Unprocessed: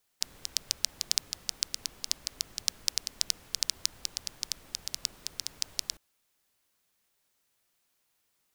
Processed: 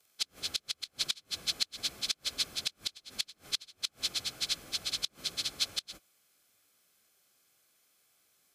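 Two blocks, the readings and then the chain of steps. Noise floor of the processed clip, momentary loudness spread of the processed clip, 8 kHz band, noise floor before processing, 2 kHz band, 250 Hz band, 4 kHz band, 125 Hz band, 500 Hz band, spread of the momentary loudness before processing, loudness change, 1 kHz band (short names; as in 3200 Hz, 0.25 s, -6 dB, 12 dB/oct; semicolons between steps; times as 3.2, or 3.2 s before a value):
-75 dBFS, 6 LU, -5.5 dB, -76 dBFS, +3.0 dB, +2.5 dB, +1.0 dB, +0.5 dB, +3.0 dB, 7 LU, -1.0 dB, +1.5 dB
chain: inharmonic rescaling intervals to 92%; flipped gate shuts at -23 dBFS, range -26 dB; notch comb 930 Hz; gain +8.5 dB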